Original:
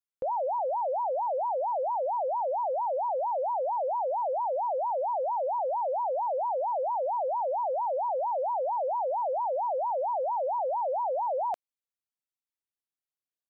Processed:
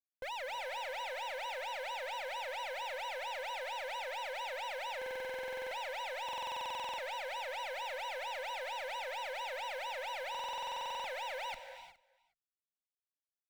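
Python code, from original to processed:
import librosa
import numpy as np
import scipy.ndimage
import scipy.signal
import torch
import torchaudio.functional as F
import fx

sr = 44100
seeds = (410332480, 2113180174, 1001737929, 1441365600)

y = scipy.signal.sosfilt(scipy.signal.butter(2, 610.0, 'highpass', fs=sr, output='sos'), x)
y = fx.over_compress(y, sr, threshold_db=-31.0, ratio=-0.5)
y = 10.0 ** (-33.5 / 20.0) * (np.abs((y / 10.0 ** (-33.5 / 20.0) + 3.0) % 4.0 - 2.0) - 1.0)
y = fx.tube_stage(y, sr, drive_db=40.0, bias=0.75)
y = fx.quant_float(y, sr, bits=2)
y = fx.clip_asym(y, sr, top_db=-47.5, bottom_db=-40.0)
y = fx.quant_dither(y, sr, seeds[0], bits=12, dither='none')
y = y + 10.0 ** (-23.5 / 20.0) * np.pad(y, (int(416 * sr / 1000.0), 0))[:len(y)]
y = fx.rev_gated(y, sr, seeds[1], gate_ms=390, shape='rising', drr_db=9.0)
y = fx.buffer_glitch(y, sr, at_s=(4.97, 6.24, 10.3), block=2048, repeats=15)
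y = y * 10.0 ** (4.0 / 20.0)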